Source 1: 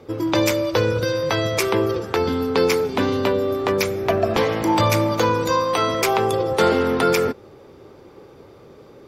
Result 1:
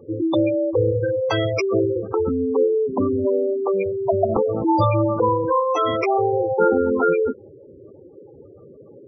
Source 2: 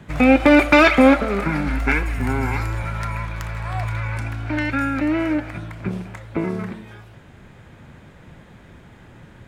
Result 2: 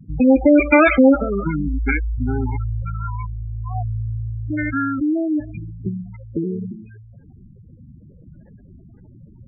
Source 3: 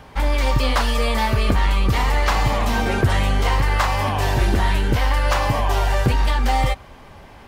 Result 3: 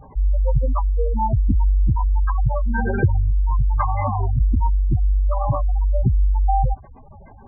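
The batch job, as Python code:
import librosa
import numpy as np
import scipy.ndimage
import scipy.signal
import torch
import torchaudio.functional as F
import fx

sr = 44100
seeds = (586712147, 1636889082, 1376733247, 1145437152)

y = fx.spec_gate(x, sr, threshold_db=-10, keep='strong')
y = F.gain(torch.from_numpy(y), 1.5).numpy()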